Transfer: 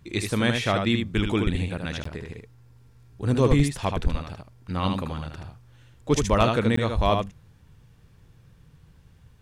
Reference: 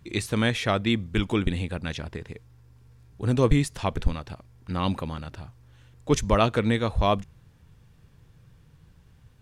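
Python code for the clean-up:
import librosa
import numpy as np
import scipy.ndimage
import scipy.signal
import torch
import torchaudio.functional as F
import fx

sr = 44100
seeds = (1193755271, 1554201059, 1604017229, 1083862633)

y = fx.fix_declip(x, sr, threshold_db=-10.0)
y = fx.fix_interpolate(y, sr, at_s=(2.04, 6.76), length_ms=14.0)
y = fx.fix_echo_inverse(y, sr, delay_ms=77, level_db=-5.0)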